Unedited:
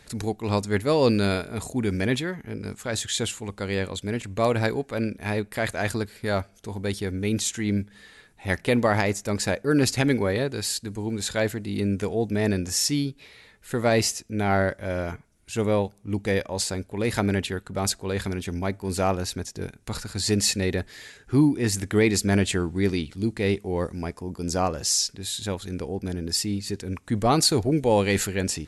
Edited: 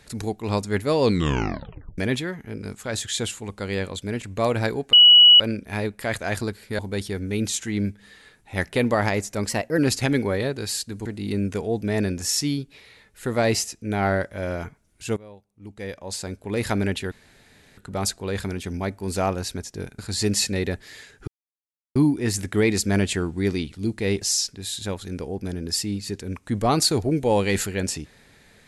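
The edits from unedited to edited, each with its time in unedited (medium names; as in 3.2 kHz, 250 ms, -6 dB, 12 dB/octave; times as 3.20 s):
1.03 s: tape stop 0.95 s
4.93 s: add tone 2.93 kHz -7.5 dBFS 0.47 s
6.32–6.71 s: delete
9.41–9.74 s: speed 112%
11.01–11.53 s: delete
15.64–16.95 s: fade in quadratic, from -22.5 dB
17.59 s: insert room tone 0.66 s
19.80–20.05 s: delete
21.34 s: insert silence 0.68 s
23.60–24.82 s: delete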